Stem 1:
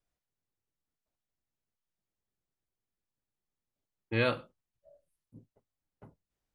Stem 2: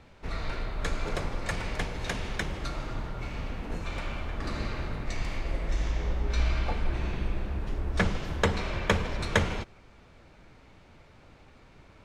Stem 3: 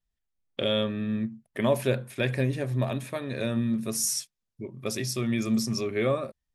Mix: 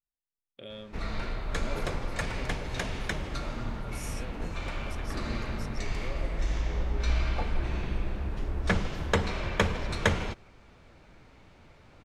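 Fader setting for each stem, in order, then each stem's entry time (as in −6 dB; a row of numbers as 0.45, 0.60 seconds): −19.5, −0.5, −17.5 decibels; 0.00, 0.70, 0.00 seconds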